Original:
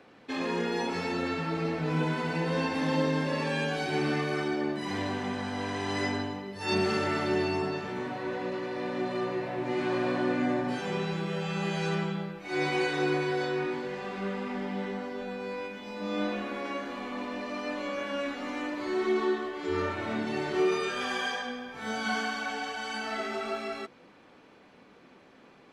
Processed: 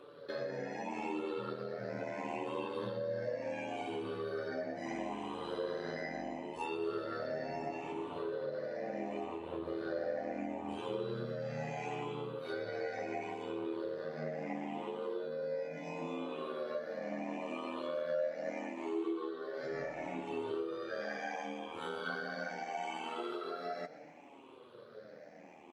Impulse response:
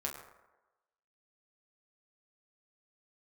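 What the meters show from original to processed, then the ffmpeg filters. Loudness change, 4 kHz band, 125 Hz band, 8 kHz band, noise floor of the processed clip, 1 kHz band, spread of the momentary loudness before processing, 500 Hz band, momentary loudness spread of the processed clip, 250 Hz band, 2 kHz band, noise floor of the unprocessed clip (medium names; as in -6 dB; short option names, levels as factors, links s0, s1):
-8.5 dB, -13.5 dB, -13.5 dB, under -10 dB, -55 dBFS, -8.0 dB, 8 LU, -6.0 dB, 4 LU, -10.5 dB, -11.5 dB, -56 dBFS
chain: -filter_complex "[0:a]afftfilt=real='re*pow(10,15/40*sin(2*PI*(0.64*log(max(b,1)*sr/1024/100)/log(2)-(0.73)*(pts-256)/sr)))':imag='im*pow(10,15/40*sin(2*PI*(0.64*log(max(b,1)*sr/1024/100)/log(2)-(0.73)*(pts-256)/sr)))':win_size=1024:overlap=0.75,acrossover=split=4100[s0][s1];[s1]acompressor=threshold=0.00447:ratio=4:attack=1:release=60[s2];[s0][s2]amix=inputs=2:normalize=0,highpass=f=120:w=0.5412,highpass=f=120:w=1.3066,equalizer=f=540:w=1.7:g=12,acompressor=threshold=0.0282:ratio=5,aeval=exprs='val(0)*sin(2*PI*40*n/s)':c=same,flanger=delay=6.8:depth=4.9:regen=29:speed=0.25:shape=sinusoidal,asplit=5[s3][s4][s5][s6][s7];[s4]adelay=122,afreqshift=43,volume=0.141[s8];[s5]adelay=244,afreqshift=86,volume=0.0624[s9];[s6]adelay=366,afreqshift=129,volume=0.0272[s10];[s7]adelay=488,afreqshift=172,volume=0.012[s11];[s3][s8][s9][s10][s11]amix=inputs=5:normalize=0"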